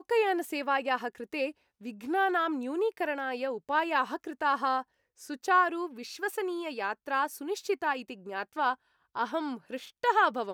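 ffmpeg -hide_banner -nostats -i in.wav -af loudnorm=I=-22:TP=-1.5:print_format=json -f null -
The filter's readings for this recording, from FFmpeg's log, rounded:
"input_i" : "-30.7",
"input_tp" : "-12.4",
"input_lra" : "3.0",
"input_thresh" : "-41.0",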